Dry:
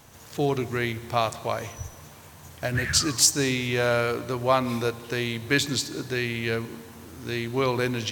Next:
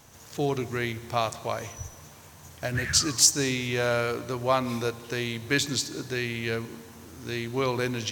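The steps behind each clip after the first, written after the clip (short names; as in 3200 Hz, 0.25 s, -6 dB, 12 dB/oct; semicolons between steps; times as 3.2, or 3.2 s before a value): bell 6100 Hz +4 dB 0.58 oct; gain -2.5 dB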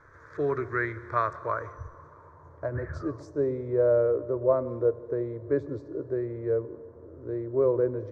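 low-pass sweep 1600 Hz -> 590 Hz, 1.16–3.47; fixed phaser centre 770 Hz, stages 6; gain +1 dB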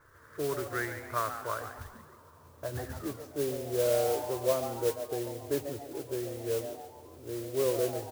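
modulation noise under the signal 12 dB; on a send: frequency-shifting echo 0.14 s, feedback 42%, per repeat +140 Hz, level -10 dB; on the sum: gain -5.5 dB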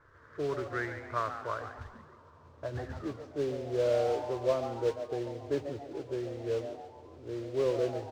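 air absorption 150 m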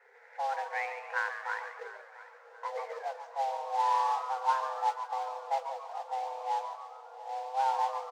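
frequency shift +390 Hz; feedback echo 0.691 s, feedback 39%, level -17 dB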